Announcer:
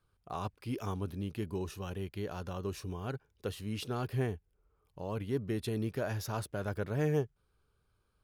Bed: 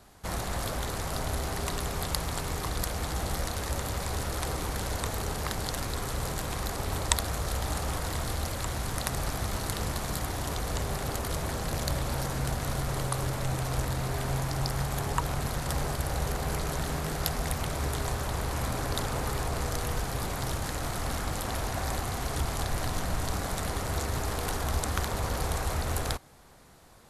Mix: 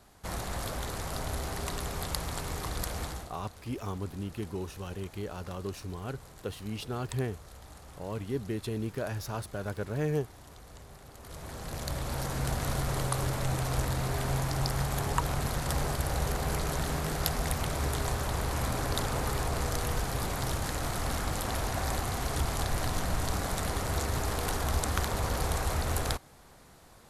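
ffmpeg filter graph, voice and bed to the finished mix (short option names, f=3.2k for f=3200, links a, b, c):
-filter_complex "[0:a]adelay=3000,volume=0.5dB[a];[1:a]volume=15.5dB,afade=t=out:st=3.02:d=0.29:silence=0.16788,afade=t=in:st=11.15:d=1.45:silence=0.11885[b];[a][b]amix=inputs=2:normalize=0"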